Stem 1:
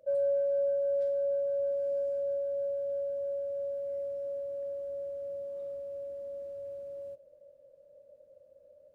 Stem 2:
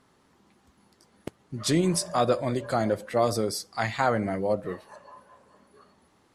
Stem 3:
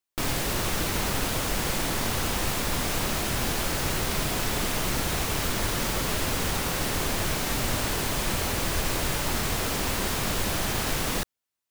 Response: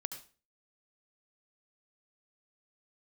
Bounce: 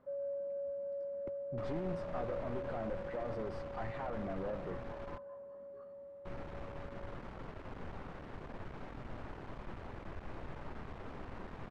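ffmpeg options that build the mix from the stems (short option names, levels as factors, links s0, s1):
-filter_complex "[0:a]volume=0.266[s0];[1:a]acompressor=threshold=0.0562:ratio=6,asoftclip=type=tanh:threshold=0.0266,volume=0.562[s1];[2:a]aeval=exprs='(tanh(28.2*val(0)+0.75)-tanh(0.75))/28.2':c=same,adelay=1400,volume=0.282,asplit=3[s2][s3][s4];[s2]atrim=end=5.18,asetpts=PTS-STARTPTS,afade=t=out:st=5.176:d=0.004:c=hsin[s5];[s3]atrim=start=5.18:end=6.25,asetpts=PTS-STARTPTS,volume=0[s6];[s4]atrim=start=6.25,asetpts=PTS-STARTPTS,afade=t=in:d=0.004:c=hsin[s7];[s5][s6][s7]concat=n=3:v=0:a=1[s8];[s0][s1][s8]amix=inputs=3:normalize=0,lowpass=1400"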